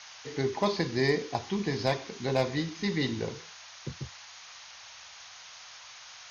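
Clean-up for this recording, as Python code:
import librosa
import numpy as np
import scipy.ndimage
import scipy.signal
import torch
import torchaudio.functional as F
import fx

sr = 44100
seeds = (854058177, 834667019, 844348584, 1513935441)

y = fx.fix_declip(x, sr, threshold_db=-15.5)
y = fx.noise_reduce(y, sr, print_start_s=4.7, print_end_s=5.2, reduce_db=27.0)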